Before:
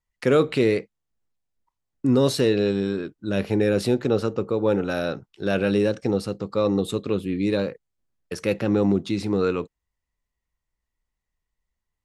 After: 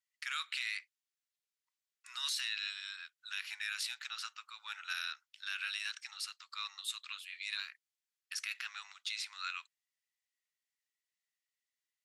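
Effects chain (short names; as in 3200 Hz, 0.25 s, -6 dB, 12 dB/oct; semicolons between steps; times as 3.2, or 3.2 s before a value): Bessel high-pass 2400 Hz, order 8; high shelf 9300 Hz -6.5 dB; limiter -27.5 dBFS, peak gain reduction 9 dB; gain +1.5 dB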